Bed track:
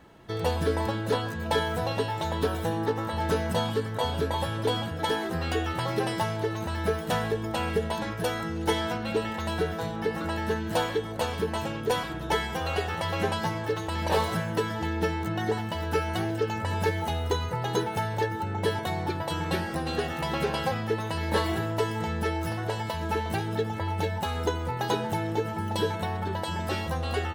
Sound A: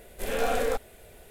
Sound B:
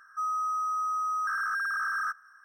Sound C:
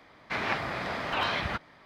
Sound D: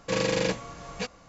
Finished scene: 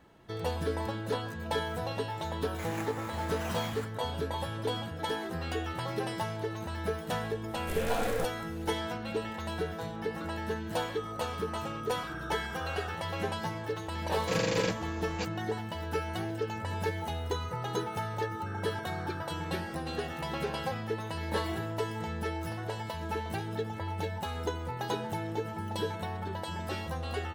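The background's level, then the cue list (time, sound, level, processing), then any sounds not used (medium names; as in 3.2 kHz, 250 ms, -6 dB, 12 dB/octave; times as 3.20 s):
bed track -6 dB
2.28 s: add C -12 dB + sample-rate reducer 8.9 kHz
7.48 s: add A -5 dB + companded quantiser 6-bit
10.80 s: add B -9.5 dB + compression 2:1, threshold -35 dBFS
14.19 s: add D -4 dB
17.19 s: add B -9 dB + compression, threshold -36 dBFS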